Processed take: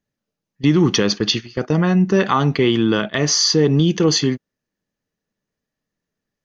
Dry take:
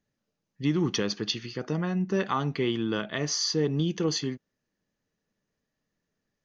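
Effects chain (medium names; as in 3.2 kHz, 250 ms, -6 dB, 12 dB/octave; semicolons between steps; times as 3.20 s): gate -34 dBFS, range -14 dB; in parallel at +1 dB: peak limiter -23 dBFS, peak gain reduction 8.5 dB; on the sum: trim +7 dB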